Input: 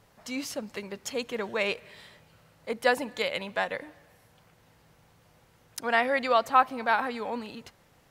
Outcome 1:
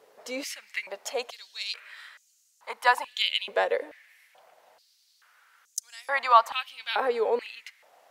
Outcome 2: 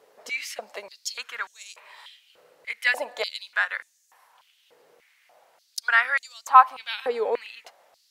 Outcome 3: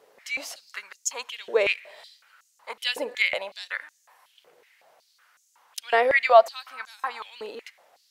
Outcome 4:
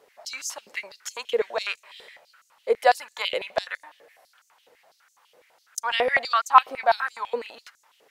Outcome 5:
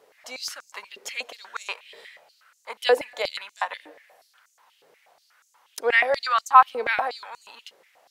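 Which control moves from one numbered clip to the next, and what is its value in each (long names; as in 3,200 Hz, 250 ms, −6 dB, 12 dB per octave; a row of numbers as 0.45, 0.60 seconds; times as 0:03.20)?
high-pass on a step sequencer, speed: 2.3, 3.4, 5.4, 12, 8.3 Hertz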